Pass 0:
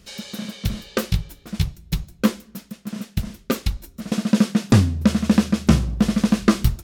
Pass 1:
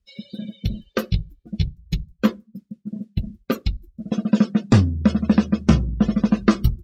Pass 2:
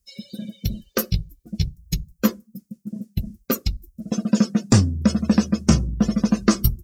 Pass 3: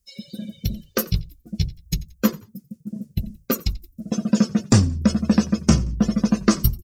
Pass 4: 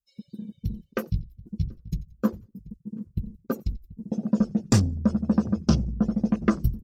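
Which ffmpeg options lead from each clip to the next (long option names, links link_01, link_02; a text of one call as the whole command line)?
ffmpeg -i in.wav -af "afftdn=noise_reduction=32:noise_floor=-32" out.wav
ffmpeg -i in.wav -af "aexciter=amount=3.7:drive=8.3:freq=5100,volume=-1dB" out.wav
ffmpeg -i in.wav -filter_complex "[0:a]asplit=3[link_01][link_02][link_03];[link_02]adelay=88,afreqshift=-55,volume=-21dB[link_04];[link_03]adelay=176,afreqshift=-110,volume=-30.9dB[link_05];[link_01][link_04][link_05]amix=inputs=3:normalize=0" out.wav
ffmpeg -i in.wav -filter_complex "[0:a]asplit=2[link_01][link_02];[link_02]adelay=733,lowpass=frequency=1000:poles=1,volume=-16.5dB,asplit=2[link_03][link_04];[link_04]adelay=733,lowpass=frequency=1000:poles=1,volume=0.28,asplit=2[link_05][link_06];[link_06]adelay=733,lowpass=frequency=1000:poles=1,volume=0.28[link_07];[link_01][link_03][link_05][link_07]amix=inputs=4:normalize=0,afwtdn=0.0282,volume=-4.5dB" out.wav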